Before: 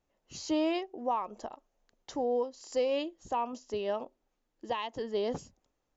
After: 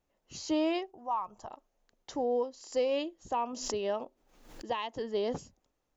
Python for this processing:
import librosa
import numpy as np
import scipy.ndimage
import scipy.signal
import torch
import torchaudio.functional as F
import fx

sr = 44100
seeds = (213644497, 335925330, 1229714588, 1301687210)

y = fx.graphic_eq(x, sr, hz=(125, 250, 500, 1000, 2000, 4000), db=(10, -12, -11, 5, -8, -5), at=(0.9, 1.46), fade=0.02)
y = fx.pre_swell(y, sr, db_per_s=68.0, at=(3.49, 4.66))